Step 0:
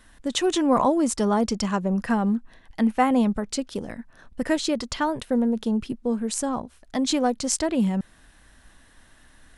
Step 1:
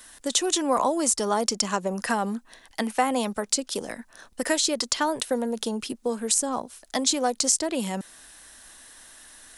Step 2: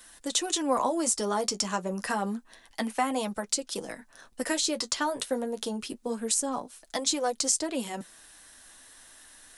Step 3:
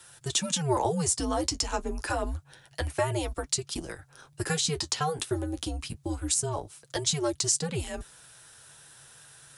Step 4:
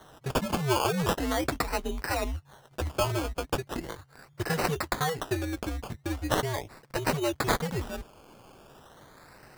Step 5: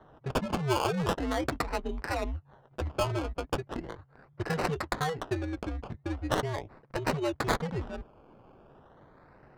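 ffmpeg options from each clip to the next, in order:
ffmpeg -i in.wav -filter_complex "[0:a]bass=frequency=250:gain=-13,treble=frequency=4000:gain=12,acrossover=split=120|530[link_01][link_02][link_03];[link_01]acompressor=threshold=-57dB:ratio=4[link_04];[link_02]acompressor=threshold=-31dB:ratio=4[link_05];[link_03]acompressor=threshold=-25dB:ratio=4[link_06];[link_04][link_05][link_06]amix=inputs=3:normalize=0,volume=3.5dB" out.wav
ffmpeg -i in.wav -af "flanger=delay=5.8:depth=5.4:regen=-38:speed=0.28:shape=sinusoidal" out.wav
ffmpeg -i in.wav -af "afreqshift=-150" out.wav
ffmpeg -i in.wav -af "acrusher=samples=18:mix=1:aa=0.000001:lfo=1:lforange=10.8:lforate=0.39" out.wav
ffmpeg -i in.wav -af "adynamicsmooth=sensitivity=3.5:basefreq=1400,volume=-1.5dB" out.wav

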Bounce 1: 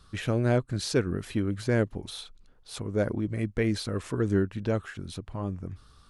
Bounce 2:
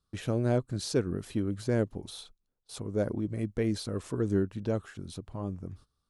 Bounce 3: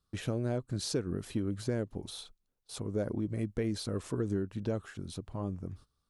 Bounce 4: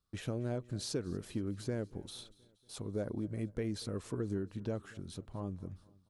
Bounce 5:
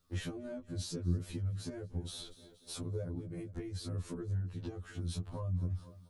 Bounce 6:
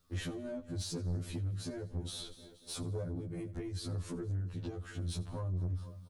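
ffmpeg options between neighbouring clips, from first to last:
ffmpeg -i in.wav -af "lowshelf=frequency=74:gain=-6,agate=range=-19dB:threshold=-49dB:ratio=16:detection=peak,equalizer=frequency=2000:width=0.82:gain=-7.5,volume=-1.5dB" out.wav
ffmpeg -i in.wav -af "acompressor=threshold=-28dB:ratio=6" out.wav
ffmpeg -i in.wav -af "aecho=1:1:237|474|711|948:0.075|0.042|0.0235|0.0132,volume=-4dB" out.wav
ffmpeg -i in.wav -filter_complex "[0:a]acrossover=split=150[link_01][link_02];[link_02]acompressor=threshold=-50dB:ratio=10[link_03];[link_01][link_03]amix=inputs=2:normalize=0,afftfilt=real='re*2*eq(mod(b,4),0)':imag='im*2*eq(mod(b,4),0)':win_size=2048:overlap=0.75,volume=11.5dB" out.wav
ffmpeg -i in.wav -af "aecho=1:1:86|172|258|344:0.1|0.05|0.025|0.0125,asoftclip=type=tanh:threshold=-33dB,volume=2.5dB" out.wav

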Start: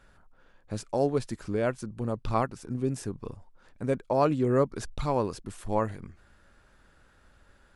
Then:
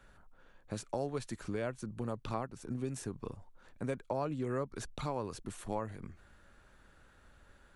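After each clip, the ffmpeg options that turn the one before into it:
ffmpeg -i in.wav -filter_complex "[0:a]bandreject=frequency=5000:width=11,acrossover=split=120|830[link_01][link_02][link_03];[link_01]acompressor=threshold=-46dB:ratio=4[link_04];[link_02]acompressor=threshold=-35dB:ratio=4[link_05];[link_03]acompressor=threshold=-41dB:ratio=4[link_06];[link_04][link_05][link_06]amix=inputs=3:normalize=0,volume=-1.5dB" out.wav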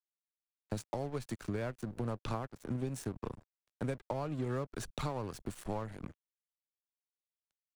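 ffmpeg -i in.wav -filter_complex "[0:a]aeval=exprs='sgn(val(0))*max(abs(val(0))-0.00376,0)':channel_layout=same,acrossover=split=130[link_01][link_02];[link_02]acompressor=threshold=-42dB:ratio=3[link_03];[link_01][link_03]amix=inputs=2:normalize=0,volume=6dB" out.wav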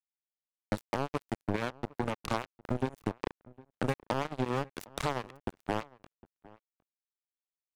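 ffmpeg -i in.wav -filter_complex "[0:a]acrusher=bits=4:mix=0:aa=0.5,asplit=2[link_01][link_02];[link_02]adelay=758,volume=-22dB,highshelf=frequency=4000:gain=-17.1[link_03];[link_01][link_03]amix=inputs=2:normalize=0,volume=5.5dB" out.wav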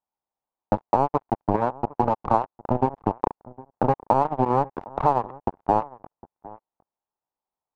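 ffmpeg -i in.wav -filter_complex "[0:a]lowpass=frequency=880:width_type=q:width=3.5,asplit=2[link_01][link_02];[link_02]volume=33dB,asoftclip=hard,volume=-33dB,volume=-11.5dB[link_03];[link_01][link_03]amix=inputs=2:normalize=0,volume=6.5dB" out.wav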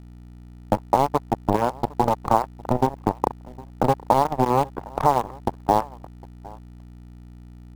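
ffmpeg -i in.wav -filter_complex "[0:a]aeval=exprs='val(0)+0.00794*(sin(2*PI*60*n/s)+sin(2*PI*2*60*n/s)/2+sin(2*PI*3*60*n/s)/3+sin(2*PI*4*60*n/s)/4+sin(2*PI*5*60*n/s)/5)':channel_layout=same,asplit=2[link_01][link_02];[link_02]acrusher=bits=4:dc=4:mix=0:aa=0.000001,volume=-9dB[link_03];[link_01][link_03]amix=inputs=2:normalize=0,volume=-1dB" out.wav

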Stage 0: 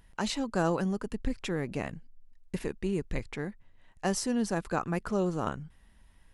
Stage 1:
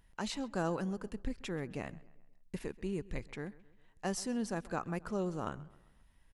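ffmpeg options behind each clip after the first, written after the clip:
ffmpeg -i in.wav -filter_complex "[0:a]asplit=2[link_01][link_02];[link_02]adelay=132,lowpass=frequency=4300:poles=1,volume=-20.5dB,asplit=2[link_03][link_04];[link_04]adelay=132,lowpass=frequency=4300:poles=1,volume=0.48,asplit=2[link_05][link_06];[link_06]adelay=132,lowpass=frequency=4300:poles=1,volume=0.48,asplit=2[link_07][link_08];[link_08]adelay=132,lowpass=frequency=4300:poles=1,volume=0.48[link_09];[link_01][link_03][link_05][link_07][link_09]amix=inputs=5:normalize=0,volume=-6.5dB" out.wav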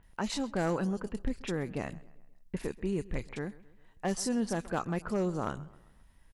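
ffmpeg -i in.wav -filter_complex "[0:a]acrossover=split=2900[link_01][link_02];[link_02]adelay=30[link_03];[link_01][link_03]amix=inputs=2:normalize=0,volume=27.5dB,asoftclip=hard,volume=-27.5dB,volume=5dB" out.wav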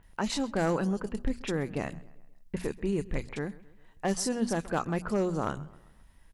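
ffmpeg -i in.wav -af "bandreject=frequency=60:width_type=h:width=6,bandreject=frequency=120:width_type=h:width=6,bandreject=frequency=180:width_type=h:width=6,bandreject=frequency=240:width_type=h:width=6,volume=3dB" out.wav

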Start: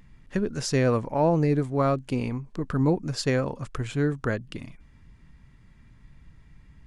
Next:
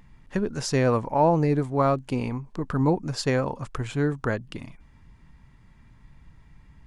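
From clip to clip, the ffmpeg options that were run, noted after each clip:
ffmpeg -i in.wav -af "equalizer=frequency=890:width_type=o:width=0.71:gain=6" out.wav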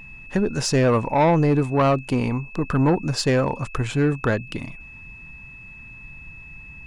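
ffmpeg -i in.wav -af "asoftclip=type=tanh:threshold=-18.5dB,aeval=exprs='val(0)+0.00447*sin(2*PI*2600*n/s)':channel_layout=same,volume=6.5dB" out.wav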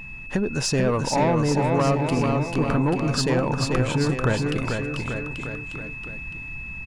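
ffmpeg -i in.wav -af "acompressor=threshold=-27dB:ratio=2.5,aecho=1:1:440|836|1192|1513|1802:0.631|0.398|0.251|0.158|0.1,volume=3.5dB" out.wav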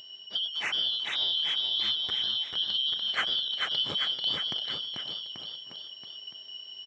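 ffmpeg -i in.wav -af "afftfilt=real='real(if(lt(b,272),68*(eq(floor(b/68),0)*2+eq(floor(b/68),1)*3+eq(floor(b/68),2)*0+eq(floor(b/68),3)*1)+mod(b,68),b),0)':imag='imag(if(lt(b,272),68*(eq(floor(b/68),0)*2+eq(floor(b/68),1)*3+eq(floor(b/68),2)*0+eq(floor(b/68),3)*1)+mod(b,68),b),0)':win_size=2048:overlap=0.75,highpass=110,lowpass=2100" out.wav

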